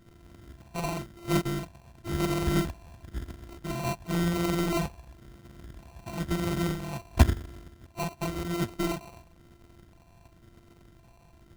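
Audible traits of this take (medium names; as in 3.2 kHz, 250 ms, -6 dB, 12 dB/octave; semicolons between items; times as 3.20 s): a buzz of ramps at a fixed pitch in blocks of 128 samples; phasing stages 6, 0.96 Hz, lowest notch 370–1300 Hz; aliases and images of a low sample rate 1.7 kHz, jitter 0%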